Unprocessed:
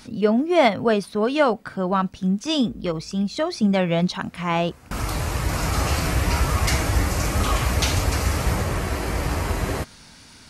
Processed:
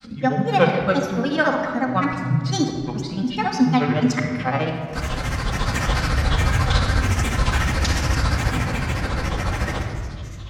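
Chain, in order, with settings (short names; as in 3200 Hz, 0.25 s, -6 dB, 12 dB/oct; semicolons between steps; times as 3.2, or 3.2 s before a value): thirty-one-band EQ 400 Hz -7 dB, 1600 Hz +8 dB, 5000 Hz +7 dB; grains, grains 14/s, spray 32 ms, pitch spread up and down by 7 st; high shelf 9400 Hz -10 dB; shoebox room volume 3300 m³, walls mixed, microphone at 2.1 m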